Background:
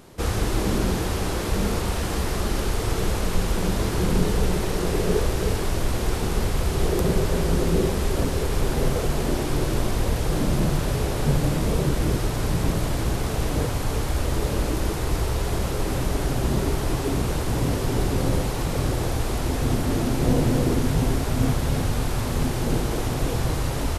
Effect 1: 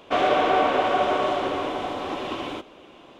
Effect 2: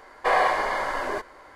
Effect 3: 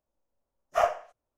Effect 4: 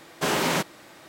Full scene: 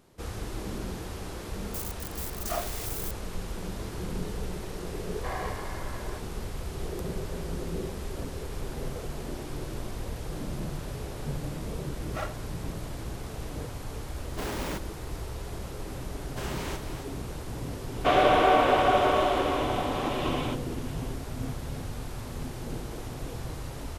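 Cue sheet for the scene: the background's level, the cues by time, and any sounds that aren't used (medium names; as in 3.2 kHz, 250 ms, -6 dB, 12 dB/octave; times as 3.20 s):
background -12.5 dB
1.74 s: add 3 -9.5 dB + zero-crossing glitches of -15.5 dBFS
4.99 s: add 2 -15.5 dB
11.39 s: add 3 -9 dB + comb filter that takes the minimum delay 3.6 ms
14.16 s: add 4 -16 dB + square wave that keeps the level
16.15 s: add 4 -13.5 dB + delay 265 ms -9.5 dB
17.94 s: add 1 -0.5 dB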